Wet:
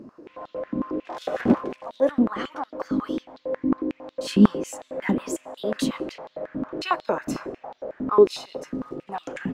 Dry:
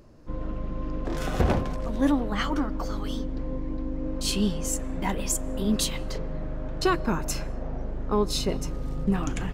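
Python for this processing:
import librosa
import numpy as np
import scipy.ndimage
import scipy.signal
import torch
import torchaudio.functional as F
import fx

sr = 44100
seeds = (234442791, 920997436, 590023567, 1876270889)

y = fx.tilt_eq(x, sr, slope=-3.0)
y = fx.rider(y, sr, range_db=5, speed_s=2.0)
y = fx.filter_held_highpass(y, sr, hz=11.0, low_hz=250.0, high_hz=3700.0)
y = F.gain(torch.from_numpy(y), -1.5).numpy()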